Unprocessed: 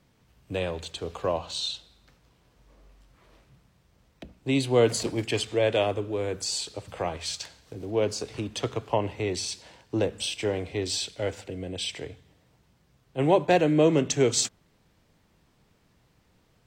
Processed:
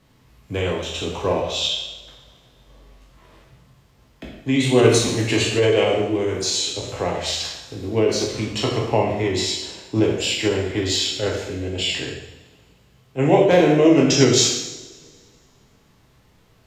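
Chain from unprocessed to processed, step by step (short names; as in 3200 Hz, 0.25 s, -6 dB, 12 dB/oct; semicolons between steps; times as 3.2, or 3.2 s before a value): spectral trails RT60 0.33 s; two-slope reverb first 0.84 s, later 2.2 s, DRR -1 dB; formant shift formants -2 st; gain +3.5 dB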